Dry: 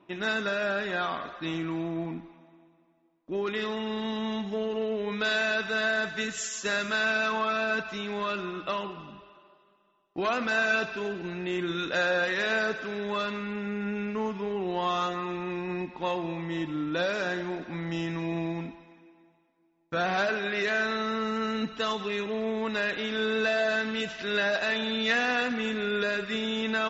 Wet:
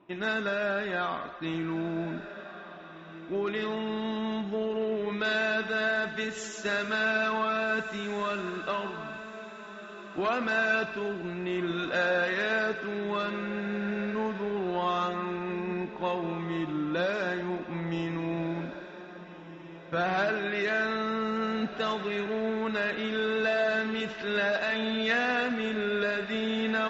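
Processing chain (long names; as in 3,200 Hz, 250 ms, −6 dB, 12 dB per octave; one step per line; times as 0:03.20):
low-pass filter 3,000 Hz 6 dB per octave
feedback delay with all-pass diffusion 1,652 ms, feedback 41%, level −13 dB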